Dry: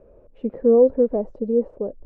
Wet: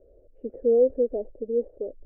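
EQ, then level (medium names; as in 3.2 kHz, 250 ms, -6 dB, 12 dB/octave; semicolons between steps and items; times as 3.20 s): low-pass 1 kHz 12 dB/octave; distance through air 300 m; static phaser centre 430 Hz, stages 4; -3.5 dB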